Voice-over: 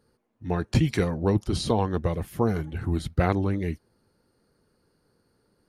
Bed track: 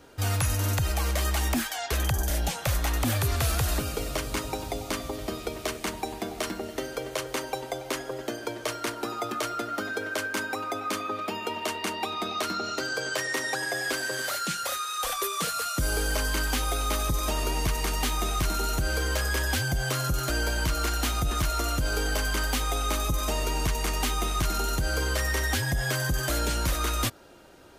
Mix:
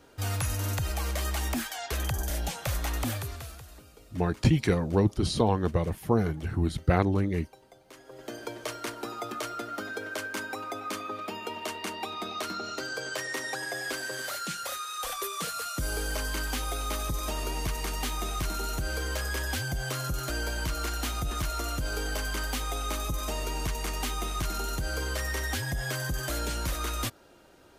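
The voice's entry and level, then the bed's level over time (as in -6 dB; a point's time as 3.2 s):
3.70 s, -0.5 dB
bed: 3.06 s -4 dB
3.68 s -22.5 dB
7.86 s -22.5 dB
8.36 s -4.5 dB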